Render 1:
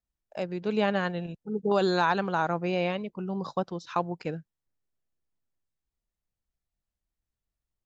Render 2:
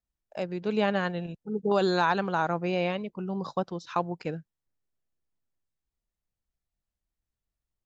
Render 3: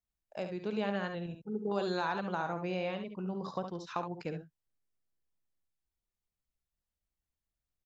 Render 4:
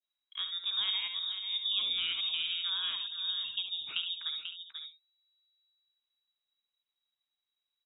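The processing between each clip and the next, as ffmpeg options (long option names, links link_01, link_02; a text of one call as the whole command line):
ffmpeg -i in.wav -af anull out.wav
ffmpeg -i in.wav -filter_complex "[0:a]acompressor=threshold=-29dB:ratio=2,asplit=2[link_01][link_02];[link_02]aecho=0:1:55|70:0.224|0.398[link_03];[link_01][link_03]amix=inputs=2:normalize=0,volume=-4.5dB" out.wav
ffmpeg -i in.wav -filter_complex "[0:a]asplit=2[link_01][link_02];[link_02]adelay=489.8,volume=-7dB,highshelf=frequency=4000:gain=-11[link_03];[link_01][link_03]amix=inputs=2:normalize=0,adynamicequalizer=threshold=0.00355:dfrequency=1700:dqfactor=0.73:tfrequency=1700:tqfactor=0.73:attack=5:release=100:ratio=0.375:range=2:mode=cutabove:tftype=bell,lowpass=frequency=3300:width_type=q:width=0.5098,lowpass=frequency=3300:width_type=q:width=0.6013,lowpass=frequency=3300:width_type=q:width=0.9,lowpass=frequency=3300:width_type=q:width=2.563,afreqshift=-3900,volume=1dB" out.wav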